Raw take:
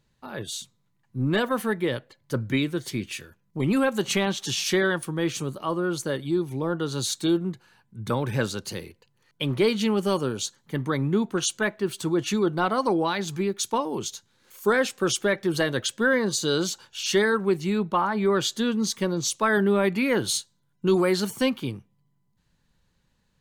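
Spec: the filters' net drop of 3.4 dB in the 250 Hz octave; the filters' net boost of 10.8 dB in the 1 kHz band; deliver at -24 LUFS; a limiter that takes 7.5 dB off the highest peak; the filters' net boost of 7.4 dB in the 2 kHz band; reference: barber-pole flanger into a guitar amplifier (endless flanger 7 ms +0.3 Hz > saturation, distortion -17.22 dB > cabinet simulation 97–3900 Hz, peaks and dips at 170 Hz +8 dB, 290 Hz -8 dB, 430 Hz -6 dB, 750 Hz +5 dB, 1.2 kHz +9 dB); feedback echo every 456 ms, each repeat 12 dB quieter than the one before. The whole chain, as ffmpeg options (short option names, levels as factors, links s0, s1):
-filter_complex "[0:a]equalizer=f=250:t=o:g=-5.5,equalizer=f=1000:t=o:g=5,equalizer=f=2000:t=o:g=6,alimiter=limit=0.2:level=0:latency=1,aecho=1:1:456|912|1368:0.251|0.0628|0.0157,asplit=2[s0][s1];[s1]adelay=7,afreqshift=0.3[s2];[s0][s2]amix=inputs=2:normalize=1,asoftclip=threshold=0.0944,highpass=97,equalizer=f=170:t=q:w=4:g=8,equalizer=f=290:t=q:w=4:g=-8,equalizer=f=430:t=q:w=4:g=-6,equalizer=f=750:t=q:w=4:g=5,equalizer=f=1200:t=q:w=4:g=9,lowpass=f=3900:w=0.5412,lowpass=f=3900:w=1.3066,volume=1.88"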